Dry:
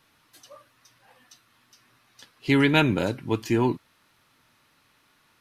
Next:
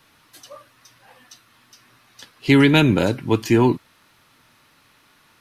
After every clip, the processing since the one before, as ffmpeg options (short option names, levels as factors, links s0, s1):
-filter_complex "[0:a]acrossover=split=470|3000[s0][s1][s2];[s1]acompressor=threshold=0.0501:ratio=6[s3];[s0][s3][s2]amix=inputs=3:normalize=0,volume=2.24"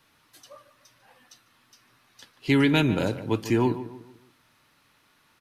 -filter_complex "[0:a]asplit=2[s0][s1];[s1]adelay=147,lowpass=f=1900:p=1,volume=0.237,asplit=2[s2][s3];[s3]adelay=147,lowpass=f=1900:p=1,volume=0.4,asplit=2[s4][s5];[s5]adelay=147,lowpass=f=1900:p=1,volume=0.4,asplit=2[s6][s7];[s7]adelay=147,lowpass=f=1900:p=1,volume=0.4[s8];[s0][s2][s4][s6][s8]amix=inputs=5:normalize=0,volume=0.447"